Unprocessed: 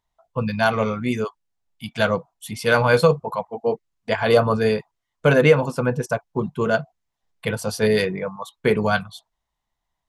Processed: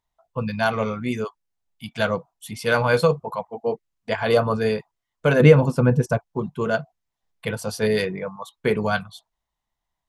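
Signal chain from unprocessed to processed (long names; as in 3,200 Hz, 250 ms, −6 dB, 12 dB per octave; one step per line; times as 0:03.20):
0:05.40–0:06.22: low-shelf EQ 340 Hz +11 dB
level −2.5 dB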